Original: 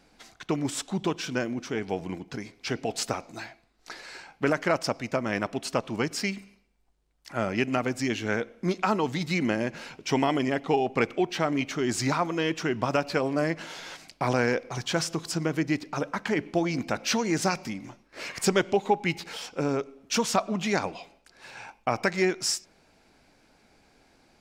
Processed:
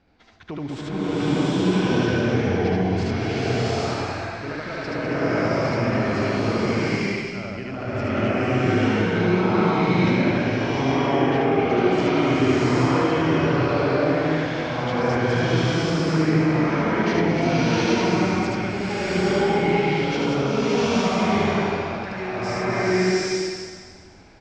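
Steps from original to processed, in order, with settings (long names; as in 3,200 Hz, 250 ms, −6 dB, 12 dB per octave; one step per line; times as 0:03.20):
high-frequency loss of the air 190 metres
loudspeakers that aren't time-aligned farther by 26 metres 0 dB, 69 metres −11 dB, 95 metres −10 dB
brickwall limiter −19.5 dBFS, peak gain reduction 12.5 dB
parametric band 83 Hz +13.5 dB 0.63 octaves
slow-attack reverb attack 830 ms, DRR −11.5 dB
level −3.5 dB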